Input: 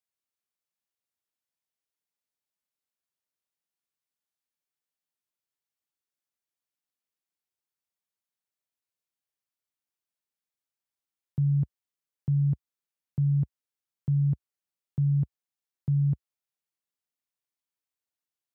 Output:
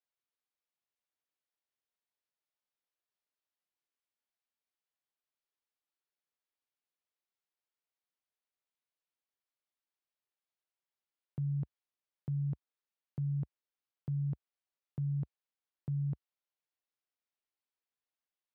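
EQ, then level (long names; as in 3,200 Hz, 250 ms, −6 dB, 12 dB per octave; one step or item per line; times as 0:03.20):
high-frequency loss of the air 340 metres
bass and treble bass −11 dB, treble +12 dB
0.0 dB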